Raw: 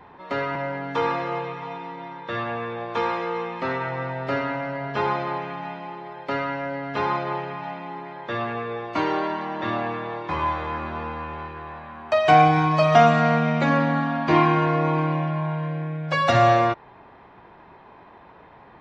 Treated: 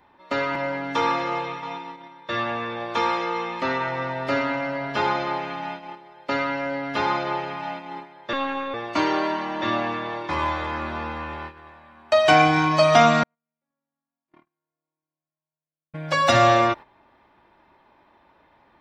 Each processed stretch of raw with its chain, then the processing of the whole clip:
8.33–8.74 s: peaking EQ 1.3 kHz +6 dB 1.3 oct + robot voice 273 Hz
13.23–15.94 s: low-pass 2.2 kHz 6 dB/octave + gate -13 dBFS, range -57 dB
whole clip: gate -34 dBFS, range -11 dB; treble shelf 3.6 kHz +11.5 dB; comb 3.4 ms, depth 37%

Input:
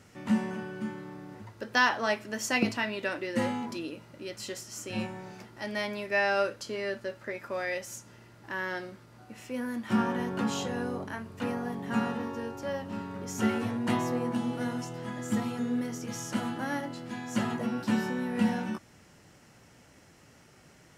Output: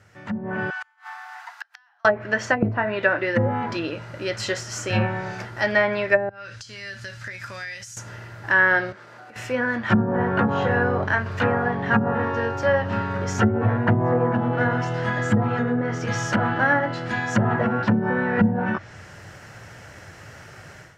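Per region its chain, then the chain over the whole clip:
0.70–2.05 s: Chebyshev high-pass 700 Hz, order 8 + compression 16:1, threshold -38 dBFS + inverted gate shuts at -38 dBFS, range -32 dB
6.29–7.97 s: FFT filter 140 Hz 0 dB, 500 Hz -18 dB, 5.3 kHz +7 dB + compression 10:1, threshold -46 dBFS + low-pass 9.6 kHz
8.92–9.36 s: high-pass 280 Hz + treble shelf 10 kHz -9.5 dB + compression 4:1, threshold -54 dBFS
11.26–11.89 s: peaking EQ 9.6 kHz -7.5 dB 1.1 oct + tape noise reduction on one side only encoder only
whole clip: low-pass that closes with the level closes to 350 Hz, closed at -23 dBFS; fifteen-band graphic EQ 100 Hz +9 dB, 250 Hz -7 dB, 630 Hz +4 dB, 1.6 kHz +9 dB, 10 kHz -5 dB; level rider gain up to 14 dB; trim -2.5 dB

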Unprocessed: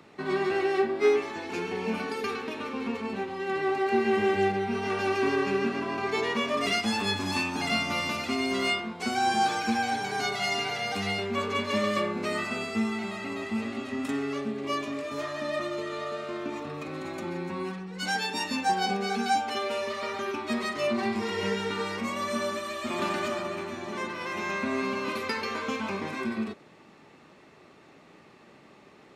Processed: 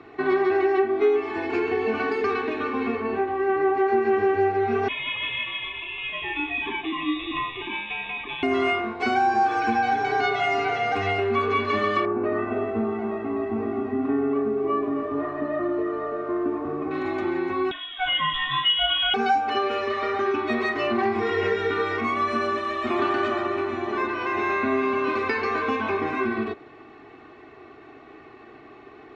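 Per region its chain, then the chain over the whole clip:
2.95–3.77 s: treble shelf 3.5 kHz -9.5 dB + flutter echo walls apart 11.4 m, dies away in 0.31 s
4.88–8.43 s: peaking EQ 270 Hz -8.5 dB 1.8 oct + static phaser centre 2.2 kHz, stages 6 + frequency inversion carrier 3.7 kHz
12.05–16.91 s: low-pass 1.1 kHz + bit-crushed delay 268 ms, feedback 35%, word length 9-bit, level -10 dB
17.71–19.14 s: bass shelf 250 Hz +11 dB + comb 2.3 ms, depth 60% + frequency inversion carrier 3.7 kHz
whole clip: low-pass 2.4 kHz 12 dB/octave; comb 2.7 ms, depth 91%; compression 3:1, threshold -25 dBFS; trim +5.5 dB

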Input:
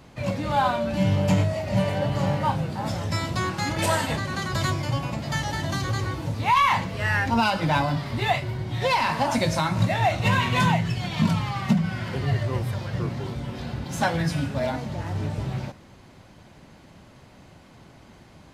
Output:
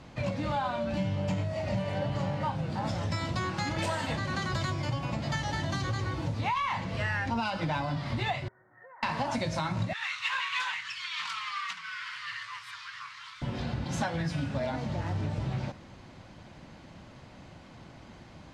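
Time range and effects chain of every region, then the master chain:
8.48–9.03 s: rippled Chebyshev low-pass 1.9 kHz, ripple 6 dB + differentiator + compression 2.5:1, threshold -51 dBFS
9.93–13.42 s: elliptic high-pass 1.1 kHz + loudspeaker Doppler distortion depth 0.14 ms
whole clip: low-pass 6.7 kHz 12 dB/octave; band-stop 410 Hz, Q 12; compression, threshold -28 dBFS

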